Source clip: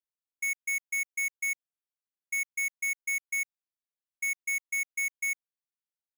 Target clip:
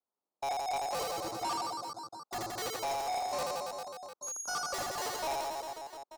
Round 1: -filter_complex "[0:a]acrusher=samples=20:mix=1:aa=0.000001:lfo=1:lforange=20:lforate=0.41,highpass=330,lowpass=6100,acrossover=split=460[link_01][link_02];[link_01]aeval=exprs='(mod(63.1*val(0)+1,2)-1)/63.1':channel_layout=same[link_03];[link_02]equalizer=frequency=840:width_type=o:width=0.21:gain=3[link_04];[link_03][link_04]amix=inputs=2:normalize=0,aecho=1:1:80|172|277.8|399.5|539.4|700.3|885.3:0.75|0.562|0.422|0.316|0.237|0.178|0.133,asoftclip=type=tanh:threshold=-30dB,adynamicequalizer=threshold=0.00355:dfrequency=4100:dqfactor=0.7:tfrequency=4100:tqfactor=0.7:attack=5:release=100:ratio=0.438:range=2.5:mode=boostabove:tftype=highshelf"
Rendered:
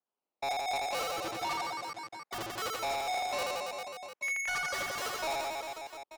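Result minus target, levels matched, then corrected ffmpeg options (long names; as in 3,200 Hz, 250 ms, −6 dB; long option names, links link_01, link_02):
2,000 Hz band +6.5 dB
-filter_complex "[0:a]acrusher=samples=20:mix=1:aa=0.000001:lfo=1:lforange=20:lforate=0.41,highpass=330,lowpass=6100,acrossover=split=460[link_01][link_02];[link_01]aeval=exprs='(mod(63.1*val(0)+1,2)-1)/63.1':channel_layout=same[link_03];[link_02]asuperstop=centerf=2400:order=12:qfactor=0.91,equalizer=frequency=840:width_type=o:width=0.21:gain=3[link_04];[link_03][link_04]amix=inputs=2:normalize=0,aecho=1:1:80|172|277.8|399.5|539.4|700.3|885.3:0.75|0.562|0.422|0.316|0.237|0.178|0.133,asoftclip=type=tanh:threshold=-30dB,adynamicequalizer=threshold=0.00355:dfrequency=4100:dqfactor=0.7:tfrequency=4100:tqfactor=0.7:attack=5:release=100:ratio=0.438:range=2.5:mode=boostabove:tftype=highshelf"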